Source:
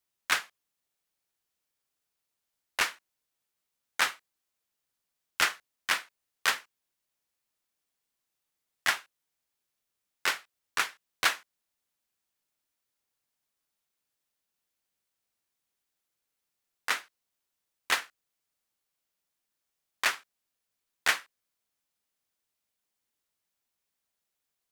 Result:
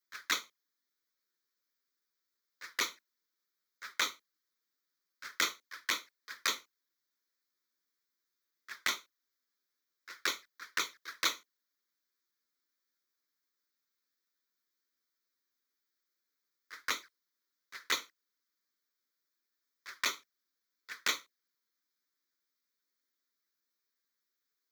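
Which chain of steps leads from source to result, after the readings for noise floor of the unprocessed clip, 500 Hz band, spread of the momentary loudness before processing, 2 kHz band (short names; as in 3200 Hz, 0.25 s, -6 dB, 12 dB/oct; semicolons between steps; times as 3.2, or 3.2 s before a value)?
-85 dBFS, -5.0 dB, 10 LU, -7.0 dB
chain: HPF 240 Hz 24 dB/oct; fixed phaser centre 2800 Hz, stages 6; reverse echo 0.176 s -19.5 dB; envelope flanger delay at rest 11.4 ms, full sweep at -31.5 dBFS; modulation noise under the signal 19 dB; gain +4 dB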